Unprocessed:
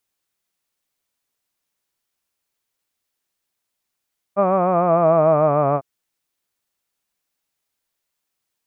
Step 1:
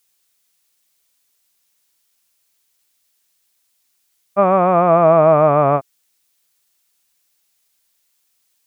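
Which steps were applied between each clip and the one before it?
high shelf 2200 Hz +11.5 dB; gain +3 dB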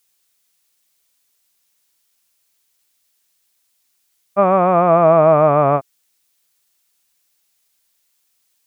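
nothing audible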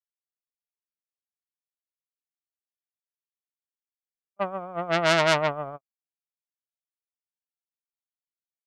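requantised 10-bit, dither none; gate -9 dBFS, range -56 dB; core saturation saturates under 3000 Hz; gain +2 dB

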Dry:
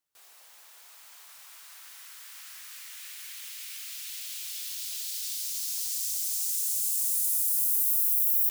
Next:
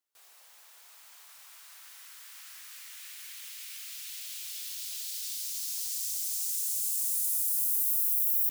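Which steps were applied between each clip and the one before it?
HPF 300 Hz 12 dB/oct; gain -2.5 dB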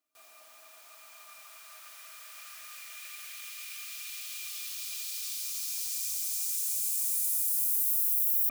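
small resonant body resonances 280/640/1200/2400 Hz, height 18 dB, ringing for 90 ms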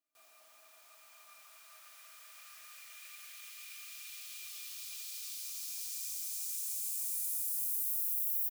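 doubler 36 ms -13 dB; gain -7 dB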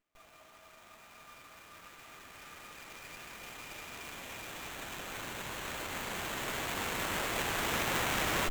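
running maximum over 9 samples; gain +7 dB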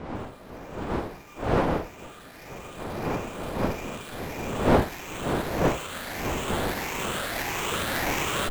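moving spectral ripple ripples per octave 0.73, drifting +1.6 Hz, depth 7 dB; wind noise 630 Hz -33 dBFS; gain +3 dB

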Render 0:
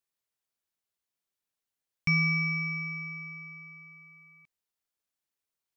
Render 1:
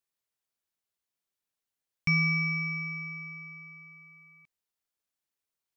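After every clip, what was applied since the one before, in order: nothing audible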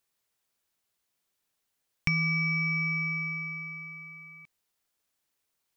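compressor 5:1, threshold -34 dBFS, peak gain reduction 11 dB; gain +8.5 dB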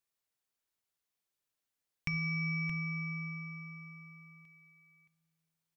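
echo 0.622 s -10 dB; shoebox room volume 1800 m³, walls mixed, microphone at 0.43 m; gain -9 dB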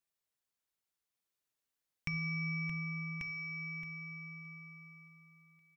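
echo 1.139 s -5.5 dB; gain -2.5 dB

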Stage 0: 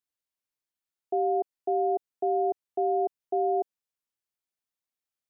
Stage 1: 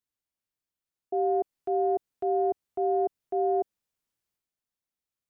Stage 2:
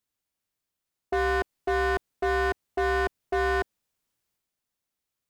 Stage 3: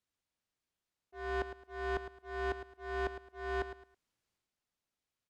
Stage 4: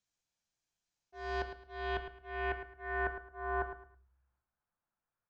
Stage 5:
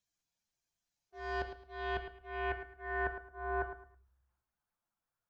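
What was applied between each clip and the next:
low shelf 330 Hz +8 dB; transient shaper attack -3 dB, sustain +6 dB; gain -2 dB
wavefolder -25 dBFS; gain +5.5 dB
auto swell 0.575 s; air absorption 50 m; feedback echo 0.108 s, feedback 26%, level -11 dB; gain -2 dB
low-pass sweep 6700 Hz -> 1300 Hz, 0.96–3.44; reverb RT60 0.45 s, pre-delay 6 ms, DRR 10.5 dB; gain -2 dB
bin magnitudes rounded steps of 15 dB

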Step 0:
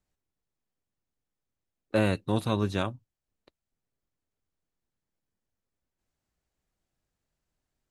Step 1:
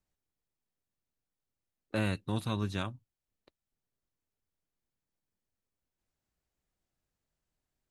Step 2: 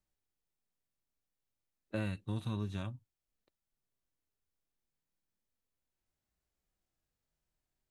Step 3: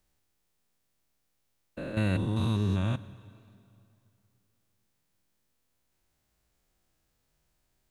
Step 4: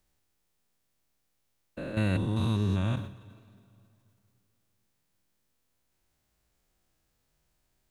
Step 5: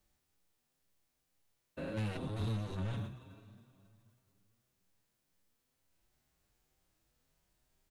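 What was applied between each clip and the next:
dynamic EQ 510 Hz, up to -7 dB, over -38 dBFS, Q 0.84; gain -3.5 dB
harmonic-percussive split percussive -15 dB; compressor 3:1, threshold -36 dBFS, peak gain reduction 7 dB; gain +2 dB
stepped spectrum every 0.2 s; in parallel at +1 dB: limiter -34.5 dBFS, peak gain reduction 7.5 dB; on the sum: plate-style reverb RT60 2.6 s, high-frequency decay 0.9×, DRR 15.5 dB; gain +7 dB
sustainer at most 93 dB/s
soft clip -32.5 dBFS, distortion -7 dB; endless flanger 6.6 ms +2 Hz; gain +1 dB

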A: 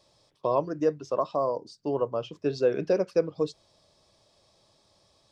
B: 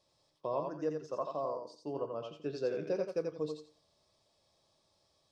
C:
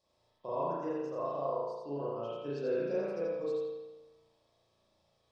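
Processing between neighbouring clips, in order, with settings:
resonator 76 Hz, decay 0.31 s, harmonics all, mix 50%; on a send: thinning echo 86 ms, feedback 25%, high-pass 310 Hz, level -4 dB; on the sum: gain -6.5 dB
spring tank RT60 1.1 s, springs 35 ms, chirp 45 ms, DRR -8 dB; gain -6.5 dB

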